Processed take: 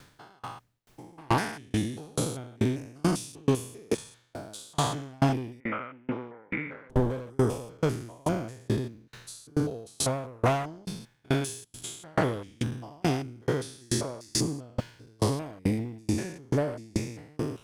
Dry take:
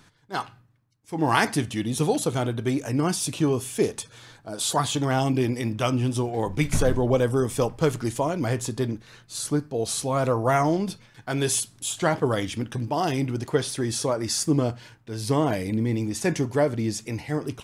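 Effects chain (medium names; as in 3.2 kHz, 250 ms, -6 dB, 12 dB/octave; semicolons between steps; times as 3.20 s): spectrogram pixelated in time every 200 ms; Chebyshev shaper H 5 -10 dB, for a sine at -11 dBFS; added noise pink -58 dBFS; 5.60–6.90 s: cabinet simulation 290–2200 Hz, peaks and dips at 370 Hz -6 dB, 700 Hz -9 dB, 1.4 kHz +8 dB, 2.1 kHz +10 dB; sawtooth tremolo in dB decaying 2.3 Hz, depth 35 dB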